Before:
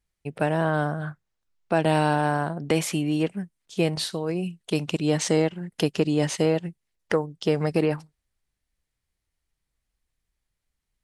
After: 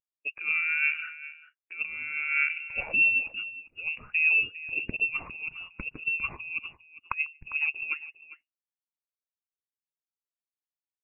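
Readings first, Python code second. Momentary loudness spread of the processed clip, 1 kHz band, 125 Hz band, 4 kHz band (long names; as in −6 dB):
15 LU, −15.0 dB, −25.5 dB, −10.0 dB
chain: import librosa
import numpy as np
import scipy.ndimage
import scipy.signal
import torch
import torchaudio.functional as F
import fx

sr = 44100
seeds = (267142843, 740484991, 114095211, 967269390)

p1 = scipy.signal.sosfilt(scipy.signal.butter(4, 270.0, 'highpass', fs=sr, output='sos'), x)
p2 = fx.dynamic_eq(p1, sr, hz=1100.0, q=1.5, threshold_db=-40.0, ratio=4.0, max_db=-4)
p3 = fx.over_compress(p2, sr, threshold_db=-28.0, ratio=-0.5)
p4 = fx.freq_invert(p3, sr, carrier_hz=3000)
p5 = p4 + fx.echo_multitap(p4, sr, ms=(147, 402), db=(-20.0, -10.5), dry=0)
p6 = fx.spectral_expand(p5, sr, expansion=1.5)
y = p6 * 10.0 ** (-4.0 / 20.0)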